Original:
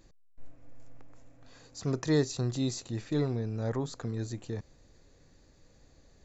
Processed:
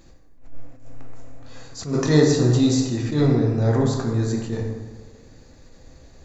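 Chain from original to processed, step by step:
dense smooth reverb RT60 1.4 s, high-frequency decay 0.5×, DRR −1 dB
level that may rise only so fast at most 130 dB per second
level +8.5 dB

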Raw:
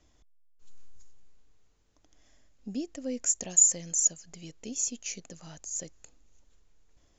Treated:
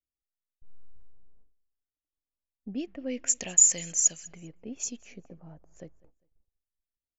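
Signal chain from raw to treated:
noise gate −53 dBFS, range −35 dB
low-pass that shuts in the quiet parts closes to 600 Hz, open at −23.5 dBFS
0:02.73–0:04.84: parametric band 2,500 Hz +11.5 dB 1.4 octaves
repeating echo 200 ms, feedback 32%, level −24 dB
one half of a high-frequency compander decoder only

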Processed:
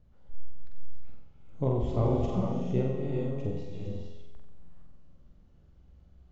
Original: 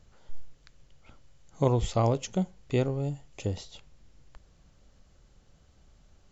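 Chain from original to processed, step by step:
low-pass filter 4,200 Hz 12 dB per octave
tilt shelving filter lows +6.5 dB, about 710 Hz
tuned comb filter 59 Hz, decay 1.3 s, harmonics all, mix 70%
on a send: flutter between parallel walls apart 7.9 metres, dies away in 0.72 s
on the sum: reverb whose tail is shaped and stops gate 480 ms rising, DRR 0.5 dB

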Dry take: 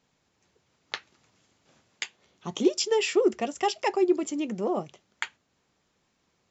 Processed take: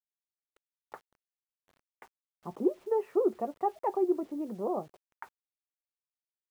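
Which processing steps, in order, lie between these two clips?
low-pass filter 1,100 Hz 24 dB per octave
low-shelf EQ 330 Hz −7.5 dB
bit reduction 10 bits
level −1.5 dB

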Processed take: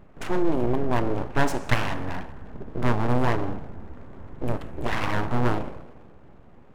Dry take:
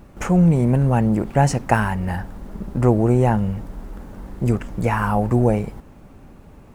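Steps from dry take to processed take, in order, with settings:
adaptive Wiener filter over 9 samples
on a send at −10 dB: parametric band 210 Hz −7.5 dB 0.66 octaves + convolution reverb RT60 1.4 s, pre-delay 13 ms
on the sum: dynamic equaliser 810 Hz, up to +3 dB, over −32 dBFS, Q 1.5
full-wave rectification
flanger 0.41 Hz, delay 4.6 ms, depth 6.5 ms, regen −86%
highs frequency-modulated by the lows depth 0.53 ms

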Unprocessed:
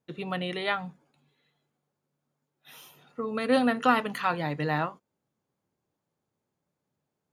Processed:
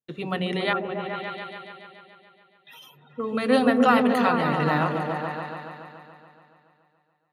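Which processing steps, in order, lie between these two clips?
0:00.73–0:03.20: expanding power law on the bin magnitudes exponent 2.5
noise gate with hold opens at −49 dBFS
echo whose low-pass opens from repeat to repeat 142 ms, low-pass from 400 Hz, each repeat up 1 octave, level 0 dB
level +3 dB

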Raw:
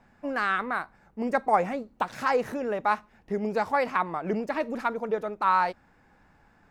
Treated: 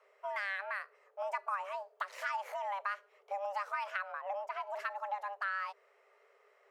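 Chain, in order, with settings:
frequency shifter +390 Hz
downward compressor 6 to 1, threshold −26 dBFS, peak gain reduction 10 dB
0:04.12–0:04.67: high-shelf EQ 2,200 Hz −8 dB
level −7 dB

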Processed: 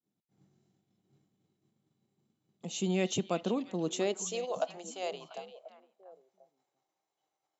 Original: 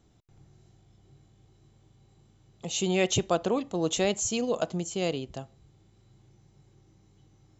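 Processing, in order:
downward expander −52 dBFS
high-pass filter sweep 200 Hz → 700 Hz, 0:03.87–0:04.53
on a send: echo through a band-pass that steps 345 ms, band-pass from 3,200 Hz, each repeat −1.4 octaves, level −9 dB
on the sum: level −8 dB

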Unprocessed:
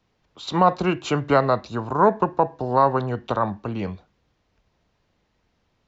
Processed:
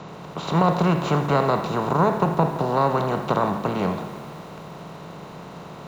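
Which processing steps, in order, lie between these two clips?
compressor on every frequency bin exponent 0.4
parametric band 160 Hz +12.5 dB 0.4 octaves
feedback echo at a low word length 84 ms, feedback 80%, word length 6 bits, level −13.5 dB
level −7 dB

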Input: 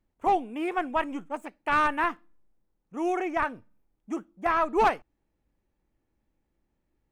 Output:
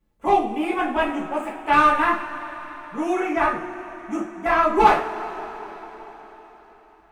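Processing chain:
coupled-rooms reverb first 0.36 s, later 4.6 s, from −20 dB, DRR −8 dB
level −1.5 dB

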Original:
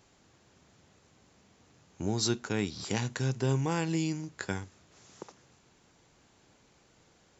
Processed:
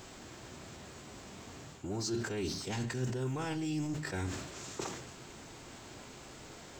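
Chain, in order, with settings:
mu-law and A-law mismatch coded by mu
reversed playback
downward compressor 5 to 1, threshold −40 dBFS, peak gain reduction 15.5 dB
reversed playback
phase-vocoder pitch shift with formants kept −2 semitones
convolution reverb RT60 0.70 s, pre-delay 3 ms, DRR 10.5 dB
wrong playback speed 44.1 kHz file played as 48 kHz
level that may fall only so fast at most 50 dB per second
level +5.5 dB

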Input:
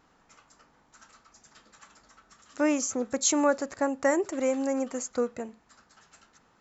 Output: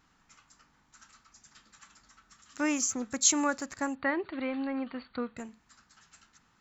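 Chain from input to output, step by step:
parametric band 530 Hz −12.5 dB 1.5 octaves
in parallel at −11 dB: dead-zone distortion −43.5 dBFS
0:03.95–0:05.37: on the sum: linear-phase brick-wall low-pass 4,600 Hz

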